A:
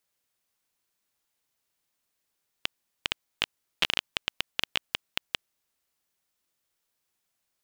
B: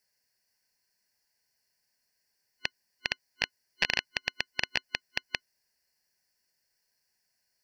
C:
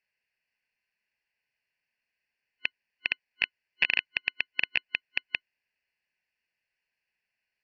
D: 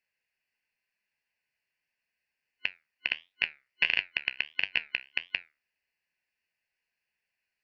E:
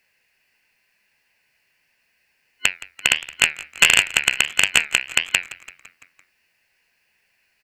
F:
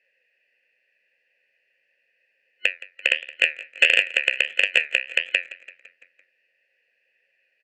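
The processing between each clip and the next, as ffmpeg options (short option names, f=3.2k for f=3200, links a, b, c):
-filter_complex "[0:a]acrossover=split=5400[a][b];[b]acompressor=threshold=-48dB:ratio=4:attack=1:release=60[c];[a][c]amix=inputs=2:normalize=0,superequalizer=6b=0.562:10b=0.398:11b=2:13b=0.355:14b=2.82"
-af "lowpass=f=2.6k:t=q:w=5.3,volume=-6.5dB"
-af "flanger=delay=10:depth=5.9:regen=71:speed=1.5:shape=triangular,volume=3.5dB"
-filter_complex "[0:a]aeval=exprs='0.376*sin(PI/2*2.51*val(0)/0.376)':c=same,asplit=6[a][b][c][d][e][f];[b]adelay=169,afreqshift=-74,volume=-19dB[g];[c]adelay=338,afreqshift=-148,volume=-23.6dB[h];[d]adelay=507,afreqshift=-222,volume=-28.2dB[i];[e]adelay=676,afreqshift=-296,volume=-32.7dB[j];[f]adelay=845,afreqshift=-370,volume=-37.3dB[k];[a][g][h][i][j][k]amix=inputs=6:normalize=0,volume=6.5dB"
-filter_complex "[0:a]asplit=3[a][b][c];[a]bandpass=f=530:t=q:w=8,volume=0dB[d];[b]bandpass=f=1.84k:t=q:w=8,volume=-6dB[e];[c]bandpass=f=2.48k:t=q:w=8,volume=-9dB[f];[d][e][f]amix=inputs=3:normalize=0,volume=8.5dB"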